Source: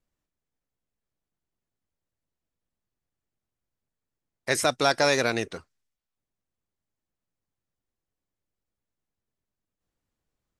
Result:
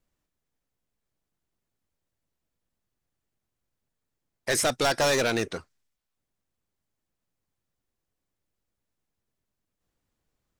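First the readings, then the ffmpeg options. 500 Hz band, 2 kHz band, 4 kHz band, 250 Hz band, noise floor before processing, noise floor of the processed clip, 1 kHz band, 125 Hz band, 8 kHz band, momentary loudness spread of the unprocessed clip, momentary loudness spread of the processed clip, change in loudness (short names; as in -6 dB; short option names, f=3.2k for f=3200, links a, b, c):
-0.5 dB, -1.5 dB, -0.5 dB, -0.5 dB, under -85 dBFS, -84 dBFS, -2.0 dB, 0.0 dB, +2.5 dB, 16 LU, 14 LU, -1.0 dB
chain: -af "asoftclip=type=hard:threshold=-23dB,volume=3.5dB"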